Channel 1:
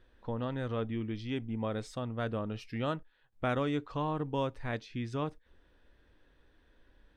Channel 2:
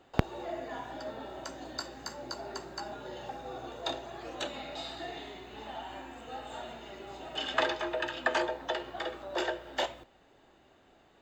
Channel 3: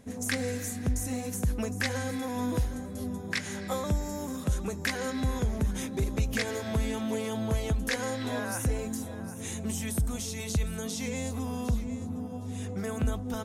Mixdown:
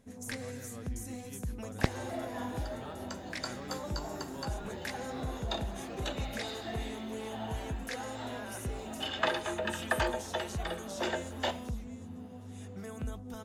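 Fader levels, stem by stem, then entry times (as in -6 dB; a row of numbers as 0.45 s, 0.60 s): -14.5 dB, -1.5 dB, -9.5 dB; 0.00 s, 1.65 s, 0.00 s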